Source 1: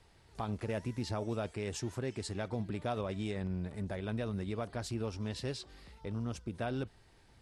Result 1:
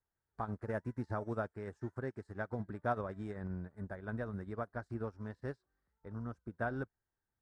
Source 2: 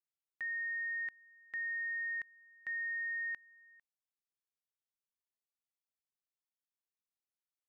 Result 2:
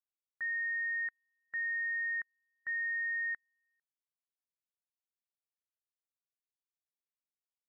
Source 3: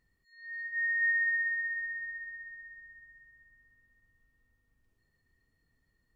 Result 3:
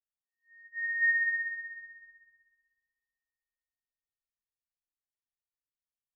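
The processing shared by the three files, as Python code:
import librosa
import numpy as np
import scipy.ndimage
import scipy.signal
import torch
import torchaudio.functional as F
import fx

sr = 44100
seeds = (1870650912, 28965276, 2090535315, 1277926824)

y = fx.high_shelf_res(x, sr, hz=2100.0, db=-9.5, q=3.0)
y = fx.upward_expand(y, sr, threshold_db=-52.0, expansion=2.5)
y = y * librosa.db_to_amplitude(2.0)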